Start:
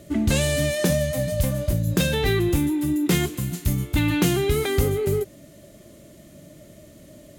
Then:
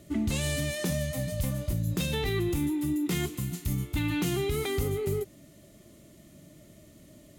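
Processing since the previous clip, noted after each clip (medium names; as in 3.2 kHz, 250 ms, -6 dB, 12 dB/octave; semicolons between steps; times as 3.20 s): peaking EQ 560 Hz -6 dB 0.47 oct; band-stop 1.6 kHz, Q 11; peak limiter -14.5 dBFS, peak gain reduction 5 dB; trim -5.5 dB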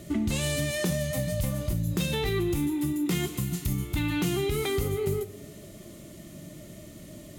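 reverberation, pre-delay 3 ms, DRR 11.5 dB; compression 2:1, threshold -38 dBFS, peak gain reduction 8 dB; trim +8 dB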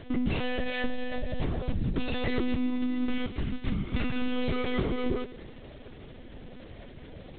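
tracing distortion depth 0.26 ms; crackle 340 per s -37 dBFS; monotone LPC vocoder at 8 kHz 250 Hz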